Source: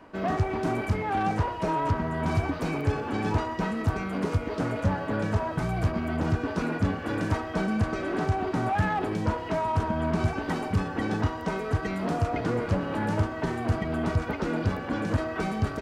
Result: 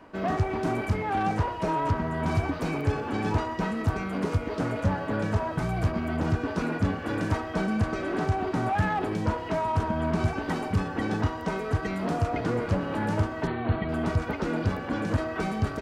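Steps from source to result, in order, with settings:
0:13.47–0:13.89: linear-phase brick-wall low-pass 4,500 Hz

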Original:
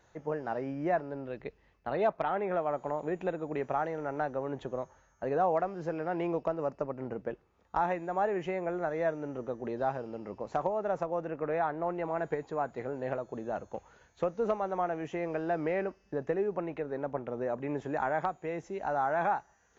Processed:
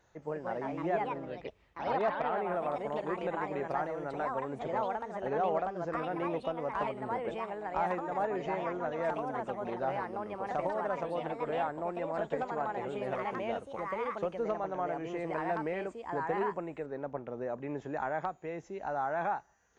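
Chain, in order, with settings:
delay with pitch and tempo change per echo 223 ms, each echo +3 semitones, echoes 2
level −3.5 dB

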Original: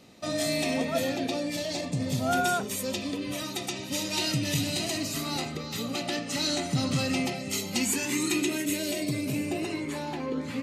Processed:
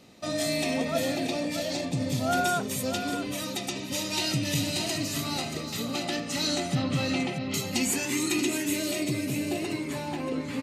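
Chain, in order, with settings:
0:06.75–0:07.54: low-pass filter 3,800 Hz 24 dB per octave
single-tap delay 631 ms −9 dB

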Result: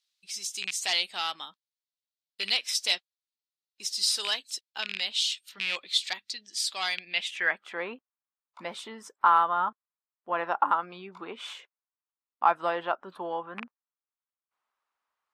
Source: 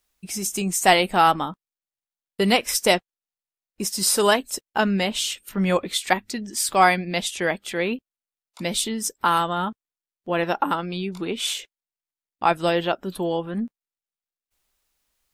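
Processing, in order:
loose part that buzzes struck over −26 dBFS, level −12 dBFS
sine wavefolder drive 5 dB, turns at −1.5 dBFS
band-pass filter sweep 4,100 Hz → 1,100 Hz, 0:06.93–0:07.72
level −6 dB

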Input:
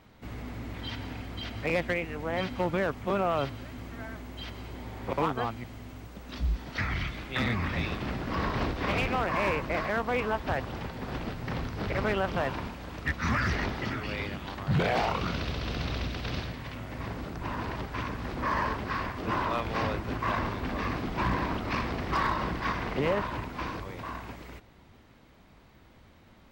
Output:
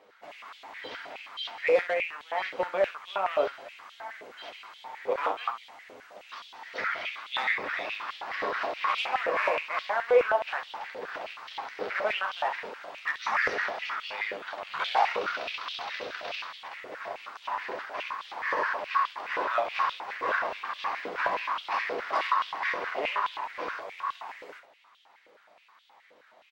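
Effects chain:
high-shelf EQ 9,200 Hz −8.5 dB
ambience of single reflections 10 ms −6 dB, 27 ms −10 dB, 67 ms −9 dB
high-pass on a step sequencer 9.5 Hz 490–3,300 Hz
level −3.5 dB

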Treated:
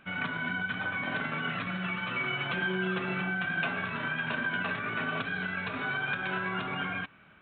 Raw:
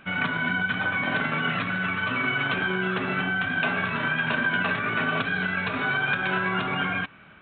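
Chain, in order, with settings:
0:01.66–0:03.67: comb filter 5.7 ms, depth 65%
level −7 dB

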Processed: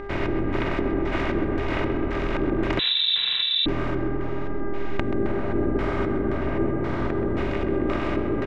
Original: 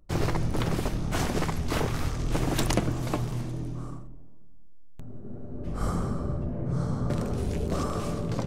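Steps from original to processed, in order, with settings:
compressor on every frequency bin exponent 0.4
camcorder AGC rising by 8.9 dB per second
auto-filter low-pass square 1.9 Hz 390–2,200 Hz
hum with harmonics 400 Hz, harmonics 5, −31 dBFS −7 dB per octave
comb filter 3.2 ms, depth 45%
on a send: tape delay 130 ms, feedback 85%, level −7 dB, low-pass 2,700 Hz
0:02.79–0:03.66: on the sum: voice inversion scrambler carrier 3,900 Hz
level −6 dB

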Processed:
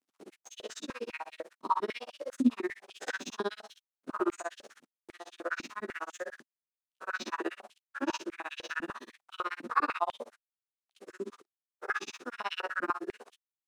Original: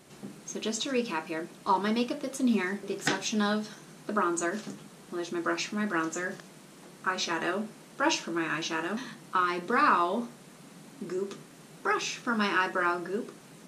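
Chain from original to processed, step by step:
spectrum smeared in time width 89 ms
noise gate −46 dBFS, range −30 dB
upward compression, threshold −39 dBFS
dead-zone distortion −53.5 dBFS
granular cloud 57 ms, grains 16 per second, spray 15 ms, pitch spread up and down by 0 semitones
high-pass on a step sequencer 10 Hz 260–3,100 Hz
level −2.5 dB

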